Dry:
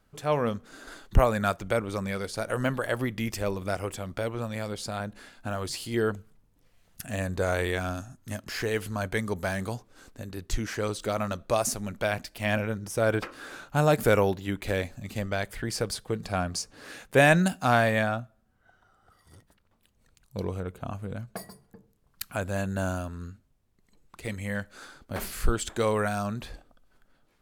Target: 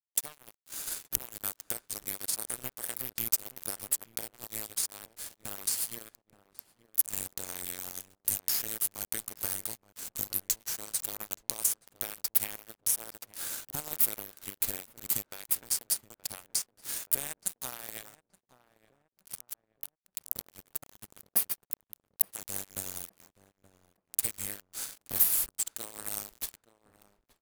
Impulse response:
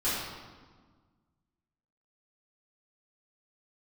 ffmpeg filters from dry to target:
-filter_complex "[0:a]acrossover=split=3200[link_01][link_02];[link_02]crystalizer=i=4.5:c=0[link_03];[link_01][link_03]amix=inputs=2:normalize=0,acompressor=threshold=-38dB:ratio=10,aemphasis=mode=production:type=50fm,aeval=exprs='sgn(val(0))*max(abs(val(0))-0.02,0)':channel_layout=same,asplit=2[link_04][link_05];[link_05]adelay=874,lowpass=frequency=1200:poles=1,volume=-16.5dB,asplit=2[link_06][link_07];[link_07]adelay=874,lowpass=frequency=1200:poles=1,volume=0.41,asplit=2[link_08][link_09];[link_09]adelay=874,lowpass=frequency=1200:poles=1,volume=0.41,asplit=2[link_10][link_11];[link_11]adelay=874,lowpass=frequency=1200:poles=1,volume=0.41[link_12];[link_06][link_08][link_10][link_12]amix=inputs=4:normalize=0[link_13];[link_04][link_13]amix=inputs=2:normalize=0,alimiter=level_in=6.5dB:limit=-1dB:release=50:level=0:latency=1,volume=-2dB"

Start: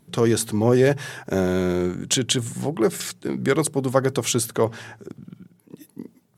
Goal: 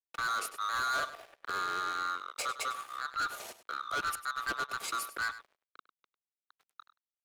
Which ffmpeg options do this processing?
ffmpeg -i in.wav -filter_complex "[0:a]afftfilt=real='real(if(lt(b,960),b+48*(1-2*mod(floor(b/48),2)),b),0)':imag='imag(if(lt(b,960),b+48*(1-2*mod(floor(b/48),2)),b),0)':win_size=2048:overlap=0.75,firequalizer=gain_entry='entry(570,0);entry(2500,-12);entry(11000,12)':delay=0.05:min_phase=1,atempo=0.88,aeval=exprs='sgn(val(0))*max(abs(val(0))-0.0224,0)':channel_layout=same,acrossover=split=380 4400:gain=0.224 1 0.0891[link_01][link_02][link_03];[link_01][link_02][link_03]amix=inputs=3:normalize=0,volume=28dB,asoftclip=hard,volume=-28dB,asplit=2[link_04][link_05];[link_05]aecho=0:1:100:0.2[link_06];[link_04][link_06]amix=inputs=2:normalize=0,volume=-1.5dB" out.wav

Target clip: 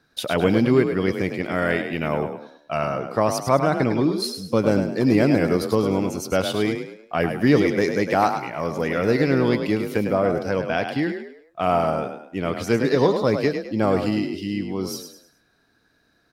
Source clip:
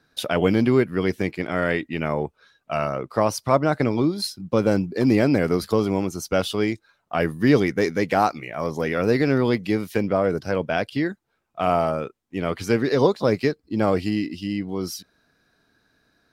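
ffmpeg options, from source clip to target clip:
ffmpeg -i in.wav -filter_complex "[0:a]asettb=1/sr,asplit=3[link_01][link_02][link_03];[link_01]atrim=end=1.424[link_04];[link_02]atrim=start=1.42:end=2.23,asetpts=PTS-STARTPTS,afade=type=in:duration=0.004:curve=qsin,afade=type=out:start_time=0.806:duration=0.004:curve=qsin,highshelf=frequency=11000:gain=11[link_05];[link_03]atrim=start=2.226[link_06];[link_04][link_05]acrossfade=duration=0.004:curve1=hsin:curve2=qsin[link_07];[link_07][link_06]acrossfade=duration=0.004:curve1=qsin:curve2=hsin,asplit=5[link_08][link_09][link_10][link_11][link_12];[link_09]adelay=104,afreqshift=36,volume=-7.5dB[link_13];[link_10]adelay=208,afreqshift=72,volume=-16.1dB[link_14];[link_11]adelay=312,afreqshift=108,volume=-24.8dB[link_15];[link_12]adelay=416,afreqshift=144,volume=-33.4dB[link_16];[link_08][link_13][link_14][link_15][link_16]amix=inputs=5:normalize=0" out.wav

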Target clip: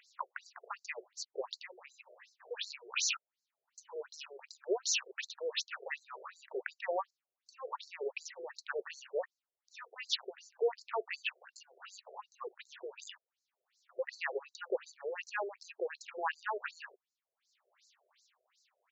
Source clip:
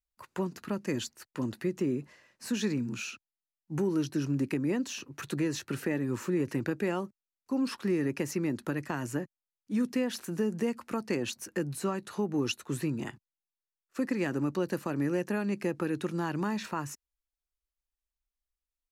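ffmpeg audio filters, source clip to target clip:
ffmpeg -i in.wav -af "acompressor=mode=upward:threshold=-51dB:ratio=2.5,tremolo=f=0.67:d=0.44,areverse,acompressor=threshold=-37dB:ratio=6,areverse,aresample=16000,aresample=44100,afftfilt=real='re*between(b*sr/1024,490*pow(5800/490,0.5+0.5*sin(2*PI*2.7*pts/sr))/1.41,490*pow(5800/490,0.5+0.5*sin(2*PI*2.7*pts/sr))*1.41)':imag='im*between(b*sr/1024,490*pow(5800/490,0.5+0.5*sin(2*PI*2.7*pts/sr))/1.41,490*pow(5800/490,0.5+0.5*sin(2*PI*2.7*pts/sr))*1.41)':win_size=1024:overlap=0.75,volume=14dB" out.wav

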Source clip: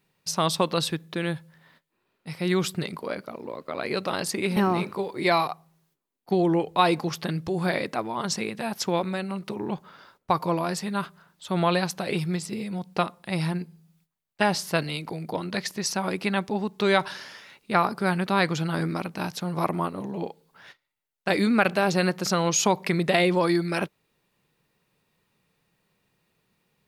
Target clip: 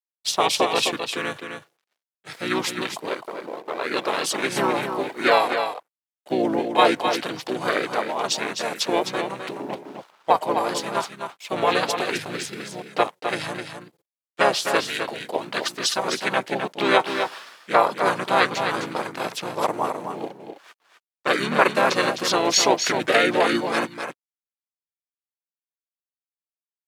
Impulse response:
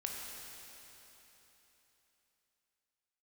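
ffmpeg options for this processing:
-filter_complex "[0:a]aeval=exprs='sgn(val(0))*max(abs(val(0))-0.00299,0)':channel_layout=same,asplit=3[link_01][link_02][link_03];[link_02]asetrate=29433,aresample=44100,atempo=1.49831,volume=0dB[link_04];[link_03]asetrate=37084,aresample=44100,atempo=1.18921,volume=-2dB[link_05];[link_01][link_04][link_05]amix=inputs=3:normalize=0,highpass=410,aecho=1:1:258:0.447,volume=1.5dB"

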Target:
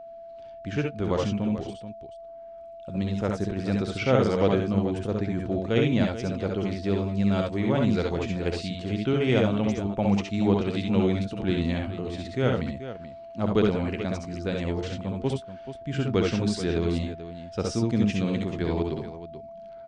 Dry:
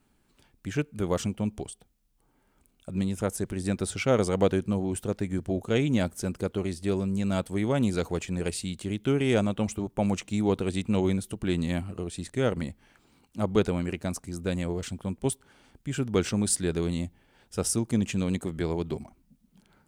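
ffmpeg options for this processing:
ffmpeg -i in.wav -af "lowpass=frequency=5200:width=0.5412,lowpass=frequency=5200:width=1.3066,aecho=1:1:61|70|85|432:0.473|0.631|0.251|0.251,aeval=exprs='val(0)+0.01*sin(2*PI*670*n/s)':channel_layout=same" out.wav

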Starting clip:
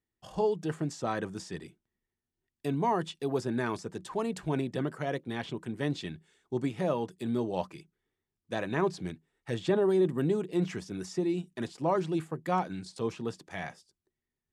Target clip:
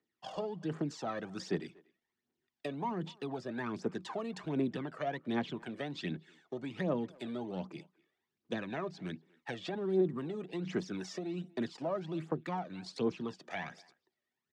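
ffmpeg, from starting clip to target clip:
ffmpeg -i in.wav -filter_complex "[0:a]aeval=exprs='if(lt(val(0),0),0.708*val(0),val(0))':channel_layout=same,highpass=59,acrossover=split=250[link_01][link_02];[link_01]alimiter=level_in=11.5dB:limit=-24dB:level=0:latency=1,volume=-11.5dB[link_03];[link_02]acompressor=threshold=-42dB:ratio=6[link_04];[link_03][link_04]amix=inputs=2:normalize=0,aphaser=in_gain=1:out_gain=1:delay=1.8:decay=0.61:speed=1.3:type=triangular,acrossover=split=190 5900:gain=0.0794 1 0.0891[link_05][link_06][link_07];[link_05][link_06][link_07]amix=inputs=3:normalize=0,asplit=2[link_08][link_09];[link_09]adelay=240,highpass=300,lowpass=3400,asoftclip=type=hard:threshold=-33.5dB,volume=-24dB[link_10];[link_08][link_10]amix=inputs=2:normalize=0,volume=4dB" out.wav

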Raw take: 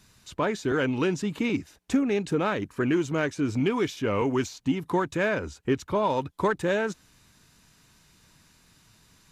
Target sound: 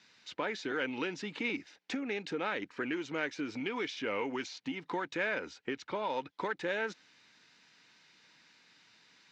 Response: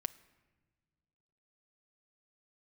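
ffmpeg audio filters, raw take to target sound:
-af "acompressor=threshold=-26dB:ratio=6,highpass=380,equalizer=frequency=390:width_type=q:width=4:gain=-5,equalizer=frequency=640:width_type=q:width=4:gain=-6,equalizer=frequency=1100:width_type=q:width=4:gain=-7,equalizer=frequency=2100:width_type=q:width=4:gain=4,lowpass=frequency=5200:width=0.5412,lowpass=frequency=5200:width=1.3066"

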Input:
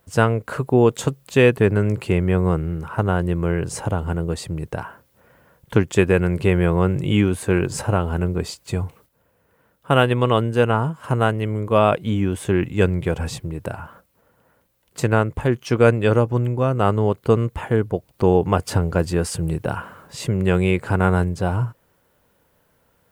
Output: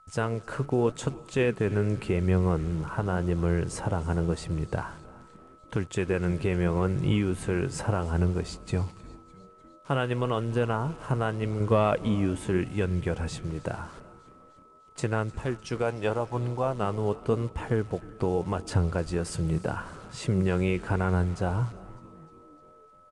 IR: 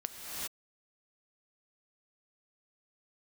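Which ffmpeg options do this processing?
-filter_complex "[0:a]asettb=1/sr,asplit=3[link_01][link_02][link_03];[link_01]atrim=end=15.824[link_04];[link_02]atrim=start=15.82:end=16.75,asetpts=PTS-STARTPTS,afade=type=in:duration=0.004:curve=qsin,afade=type=out:start_time=0.926:duration=0.004:curve=qsin,equalizer=frequency=800:width=1.2:gain=12[link_05];[link_03]atrim=start=16.746[link_06];[link_04][link_05]acrossfade=duration=0.004:curve1=hsin:curve2=qsin[link_07];[link_07][link_06]acrossfade=duration=0.004:curve1=qsin:curve2=hsin,acrossover=split=2500[link_08][link_09];[link_08]dynaudnorm=framelen=300:gausssize=5:maxgain=5.5dB[link_10];[link_10][link_09]amix=inputs=2:normalize=0,alimiter=limit=-8.5dB:level=0:latency=1:release=210,asettb=1/sr,asplit=3[link_11][link_12][link_13];[link_11]atrim=end=11.604[link_14];[link_12]atrim=start=11.6:end=12.08,asetpts=PTS-STARTPTS,afade=type=in:duration=0.004:curve=qsin,afade=type=out:start_time=0.476:duration=0.004:curve=qsin,acontrast=38[link_15];[link_13]atrim=start=12.076[link_16];[link_14][link_15]acrossfade=duration=0.004:curve1=hsin:curve2=qsin[link_17];[link_17][link_16]acrossfade=duration=0.004:curve1=qsin:curve2=hsin,acrusher=bits=8:dc=4:mix=0:aa=0.000001,flanger=delay=0.2:depth=7.1:regen=82:speed=0.85:shape=sinusoidal,aeval=exprs='val(0)+0.00282*sin(2*PI*1300*n/s)':channel_layout=same,asplit=6[link_18][link_19][link_20][link_21][link_22][link_23];[link_19]adelay=303,afreqshift=-140,volume=-21dB[link_24];[link_20]adelay=606,afreqshift=-280,volume=-25dB[link_25];[link_21]adelay=909,afreqshift=-420,volume=-29dB[link_26];[link_22]adelay=1212,afreqshift=-560,volume=-33dB[link_27];[link_23]adelay=1515,afreqshift=-700,volume=-37.1dB[link_28];[link_18][link_24][link_25][link_26][link_27][link_28]amix=inputs=6:normalize=0,asplit=2[link_29][link_30];[1:a]atrim=start_sample=2205[link_31];[link_30][link_31]afir=irnorm=-1:irlink=0,volume=-21dB[link_32];[link_29][link_32]amix=inputs=2:normalize=0,aresample=22050,aresample=44100,volume=-3.5dB"

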